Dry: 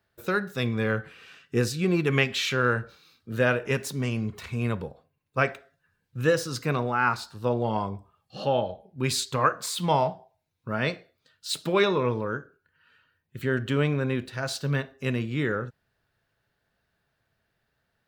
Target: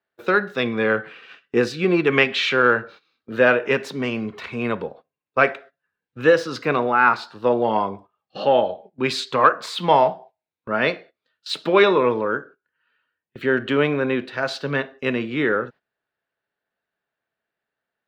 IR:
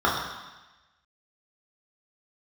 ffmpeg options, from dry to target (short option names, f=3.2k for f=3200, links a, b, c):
-filter_complex "[0:a]acontrast=52,acrossover=split=220 4200:gain=0.112 1 0.0891[a][b][c];[a][b][c]amix=inputs=3:normalize=0,agate=range=-15dB:threshold=-44dB:ratio=16:detection=peak,volume=2.5dB"